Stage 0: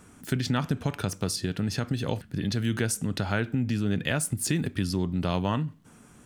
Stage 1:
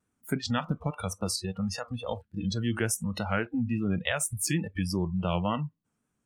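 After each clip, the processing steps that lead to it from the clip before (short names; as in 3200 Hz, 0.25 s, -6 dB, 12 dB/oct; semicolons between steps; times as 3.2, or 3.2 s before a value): vibrato 3.5 Hz 74 cents; spectral noise reduction 26 dB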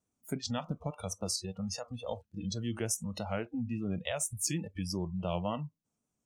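fifteen-band EQ 630 Hz +5 dB, 1600 Hz -8 dB, 6300 Hz +8 dB; gain -6.5 dB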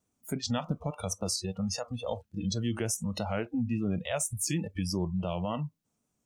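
limiter -25.5 dBFS, peak gain reduction 7.5 dB; gain +5 dB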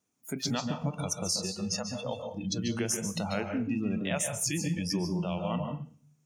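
reverb RT60 0.45 s, pre-delay 0.133 s, DRR 5 dB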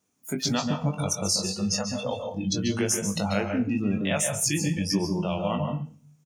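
doubler 20 ms -6.5 dB; gain +4.5 dB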